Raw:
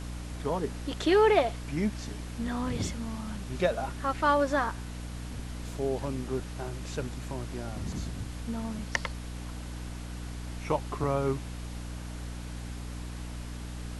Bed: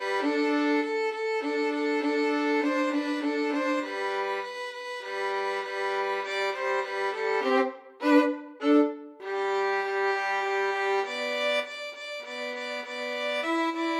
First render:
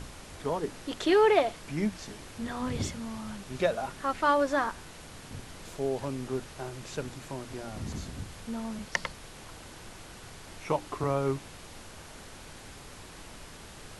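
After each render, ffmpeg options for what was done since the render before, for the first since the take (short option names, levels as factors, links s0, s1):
-af "bandreject=f=60:t=h:w=6,bandreject=f=120:t=h:w=6,bandreject=f=180:t=h:w=6,bandreject=f=240:t=h:w=6,bandreject=f=300:t=h:w=6"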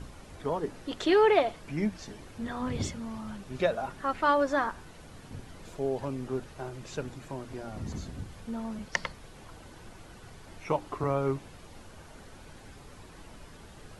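-af "afftdn=nr=8:nf=-48"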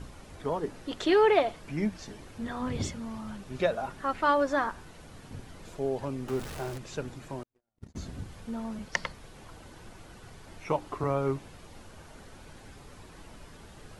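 -filter_complex "[0:a]asettb=1/sr,asplit=3[s0][s1][s2];[s0]atrim=end=6.284[s3];[s1]atrim=start=6.28:end=6.78,asetpts=PTS-STARTPTS,afade=t=in:d=0.004:c=qsin,afade=t=out:st=0.496:d=0.004:c=qsin,aeval=exprs='val(0)+0.5*0.0141*sgn(val(0))':c=same[s4];[s2]atrim=start=6.776[s5];[s3][s4]acrossfade=d=0.004:c1=hsin:c2=qsin[s6];[s6][s5]acrossfade=d=0.004:c1=qsin:c2=hsin,asettb=1/sr,asplit=3[s7][s8][s9];[s7]atrim=end=7.434[s10];[s8]atrim=start=7.43:end=7.96,asetpts=PTS-STARTPTS,afade=t=in:d=0.004:c=qsin,afade=t=out:st=0.526:d=0.004:c=qsin,agate=range=0.00355:threshold=0.02:ratio=16:release=100:detection=peak[s11];[s9]atrim=start=7.956[s12];[s10][s11]acrossfade=d=0.004:c1=hsin:c2=qsin[s13];[s13][s12]acrossfade=d=0.004:c1=qsin:c2=hsin"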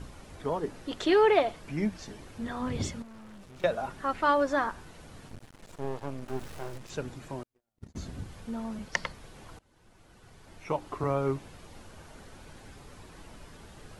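-filter_complex "[0:a]asettb=1/sr,asplit=3[s0][s1][s2];[s0]atrim=end=3.024[s3];[s1]atrim=start=3.02:end=3.64,asetpts=PTS-STARTPTS,afade=t=in:d=0.004:c=qsin,afade=t=out:st=0.616:d=0.004:c=qsin,aeval=exprs='(tanh(224*val(0)+0.45)-tanh(0.45))/224':c=same[s4];[s2]atrim=start=3.636[s5];[s3][s4]acrossfade=d=0.004:c1=hsin:c2=qsin[s6];[s6][s5]acrossfade=d=0.004:c1=qsin:c2=hsin,asettb=1/sr,asplit=3[s7][s8][s9];[s7]atrim=end=5.284[s10];[s8]atrim=start=5.28:end=6.9,asetpts=PTS-STARTPTS,afade=t=in:d=0.004:c=qsin,afade=t=out:st=1.616:d=0.004:c=qsin,aeval=exprs='max(val(0),0)':c=same[s11];[s9]atrim=start=6.896[s12];[s10][s11]acrossfade=d=0.004:c1=hsin:c2=qsin[s13];[s13][s12]acrossfade=d=0.004:c1=qsin:c2=hsin,asplit=2[s14][s15];[s14]atrim=end=9.59,asetpts=PTS-STARTPTS,afade=t=out:st=9.586:d=0.004:c=hsin:silence=0.0707946[s16];[s15]atrim=start=9.59,asetpts=PTS-STARTPTS,afade=t=in:d=1.48:silence=0.0707946[s17];[s16][s17]concat=n=2:v=0:a=1"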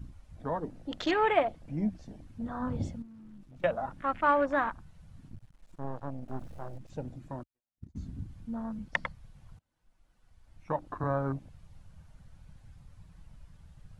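-af "afwtdn=0.0126,equalizer=f=400:t=o:w=0.34:g=-11"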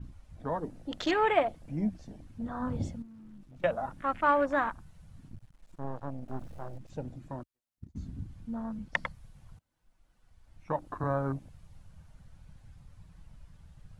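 -af "adynamicequalizer=threshold=0.00224:dfrequency=6300:dqfactor=0.7:tfrequency=6300:tqfactor=0.7:attack=5:release=100:ratio=0.375:range=3:mode=boostabove:tftype=highshelf"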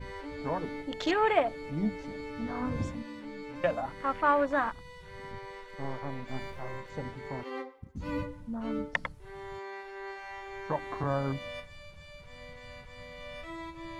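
-filter_complex "[1:a]volume=0.178[s0];[0:a][s0]amix=inputs=2:normalize=0"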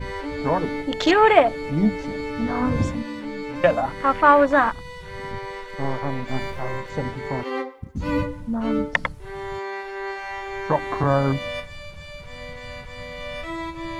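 -af "volume=3.55,alimiter=limit=0.794:level=0:latency=1"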